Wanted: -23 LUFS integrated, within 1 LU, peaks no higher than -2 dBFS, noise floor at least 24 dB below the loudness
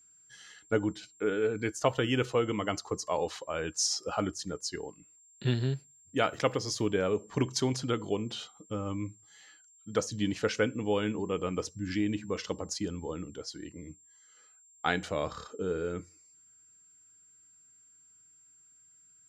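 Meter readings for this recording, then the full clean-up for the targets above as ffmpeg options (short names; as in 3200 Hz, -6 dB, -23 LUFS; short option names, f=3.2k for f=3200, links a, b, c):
steady tone 7400 Hz; tone level -58 dBFS; loudness -32.5 LUFS; peak -10.5 dBFS; loudness target -23.0 LUFS
-> -af "bandreject=f=7.4k:w=30"
-af "volume=9.5dB,alimiter=limit=-2dB:level=0:latency=1"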